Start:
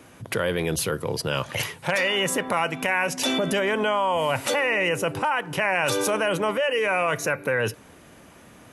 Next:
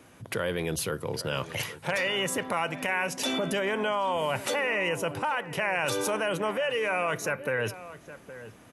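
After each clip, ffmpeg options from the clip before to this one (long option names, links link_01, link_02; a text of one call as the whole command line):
ffmpeg -i in.wav -filter_complex "[0:a]asplit=2[link_01][link_02];[link_02]adelay=816.3,volume=-14dB,highshelf=frequency=4000:gain=-18.4[link_03];[link_01][link_03]amix=inputs=2:normalize=0,volume=-5dB" out.wav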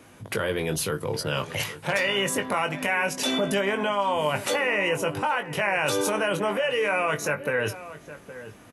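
ffmpeg -i in.wav -filter_complex "[0:a]asplit=2[link_01][link_02];[link_02]adelay=20,volume=-6.5dB[link_03];[link_01][link_03]amix=inputs=2:normalize=0,volume=2.5dB" out.wav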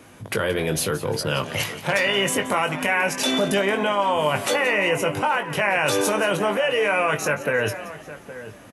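ffmpeg -i in.wav -filter_complex "[0:a]asplit=5[link_01][link_02][link_03][link_04][link_05];[link_02]adelay=175,afreqshift=88,volume=-15dB[link_06];[link_03]adelay=350,afreqshift=176,volume=-22.5dB[link_07];[link_04]adelay=525,afreqshift=264,volume=-30.1dB[link_08];[link_05]adelay=700,afreqshift=352,volume=-37.6dB[link_09];[link_01][link_06][link_07][link_08][link_09]amix=inputs=5:normalize=0,volume=3.5dB" out.wav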